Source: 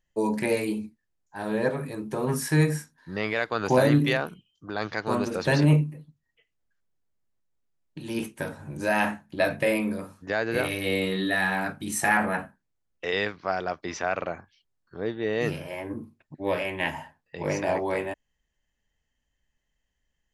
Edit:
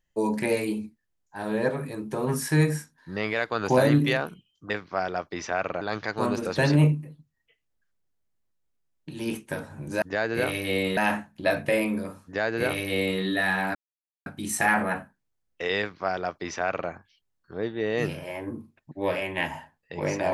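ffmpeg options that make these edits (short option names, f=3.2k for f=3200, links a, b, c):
-filter_complex "[0:a]asplit=6[a][b][c][d][e][f];[a]atrim=end=4.702[g];[b]atrim=start=13.218:end=14.332[h];[c]atrim=start=4.698:end=8.912[i];[d]atrim=start=10.188:end=11.142[j];[e]atrim=start=8.908:end=11.69,asetpts=PTS-STARTPTS,afade=t=out:st=2.778:d=0.004:c=hsin,apad=pad_dur=0.51[k];[f]atrim=start=11.69,asetpts=PTS-STARTPTS,afade=t=in:d=0.004:c=hsin[l];[g][h]acrossfade=d=0.004:c1=hsin:c2=hsin[m];[m][i]acrossfade=d=0.004:c1=hsin:c2=hsin[n];[n][j]acrossfade=d=0.004:c1=hsin:c2=hsin[o];[k][l]concat=n=2:v=0:a=1[p];[o][p]acrossfade=d=0.004:c1=hsin:c2=hsin"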